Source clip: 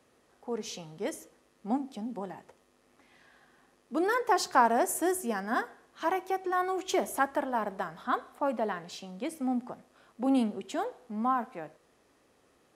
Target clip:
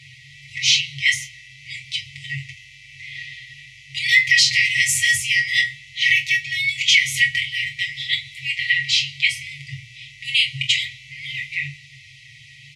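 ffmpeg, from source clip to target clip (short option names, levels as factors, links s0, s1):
-filter_complex "[0:a]afftfilt=real='re*(1-between(b*sr/4096,150,1900))':imag='im*(1-between(b*sr/4096,150,1900))':win_size=4096:overlap=0.75,highpass=100,lowpass=3300,bandreject=f=60:t=h:w=6,bandreject=f=120:t=h:w=6,bandreject=f=180:t=h:w=6,bandreject=f=240:t=h:w=6,bandreject=f=300:t=h:w=6,bandreject=f=360:t=h:w=6,bandreject=f=420:t=h:w=6,bandreject=f=480:t=h:w=6,bandreject=f=540:t=h:w=6,aecho=1:1:6.8:0.67,asplit=2[s0][s1];[s1]aecho=0:1:23|43:0.447|0.224[s2];[s0][s2]amix=inputs=2:normalize=0,alimiter=level_in=47.3:limit=0.891:release=50:level=0:latency=1,volume=0.708" -ar 32000 -c:a libmp3lame -b:a 128k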